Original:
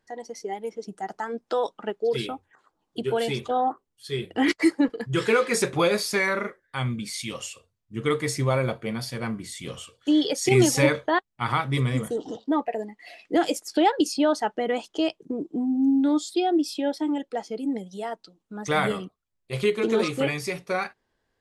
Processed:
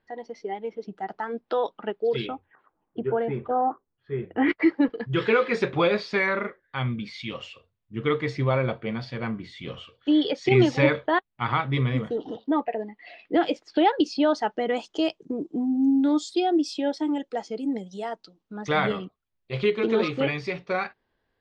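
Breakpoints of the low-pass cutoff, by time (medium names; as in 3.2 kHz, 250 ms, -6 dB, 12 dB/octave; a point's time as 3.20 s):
low-pass 24 dB/octave
2.14 s 3.9 kHz
3.14 s 1.7 kHz
4.16 s 1.7 kHz
4.86 s 3.8 kHz
13.74 s 3.8 kHz
14.84 s 7.1 kHz
18.04 s 7.1 kHz
18.96 s 4.3 kHz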